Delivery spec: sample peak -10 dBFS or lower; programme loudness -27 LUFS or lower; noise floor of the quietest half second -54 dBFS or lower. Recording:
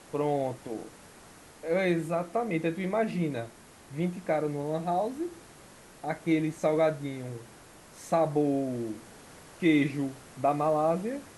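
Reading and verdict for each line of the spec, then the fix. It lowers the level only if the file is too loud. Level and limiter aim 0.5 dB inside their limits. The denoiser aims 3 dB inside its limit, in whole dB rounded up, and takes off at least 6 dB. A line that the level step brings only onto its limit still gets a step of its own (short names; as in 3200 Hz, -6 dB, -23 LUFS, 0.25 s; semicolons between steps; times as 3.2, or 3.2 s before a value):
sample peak -12.5 dBFS: OK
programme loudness -29.5 LUFS: OK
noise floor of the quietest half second -52 dBFS: fail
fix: denoiser 6 dB, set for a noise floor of -52 dBFS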